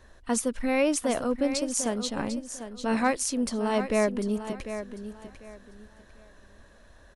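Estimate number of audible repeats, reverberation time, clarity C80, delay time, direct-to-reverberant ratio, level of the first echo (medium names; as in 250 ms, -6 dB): 3, no reverb, no reverb, 747 ms, no reverb, -10.5 dB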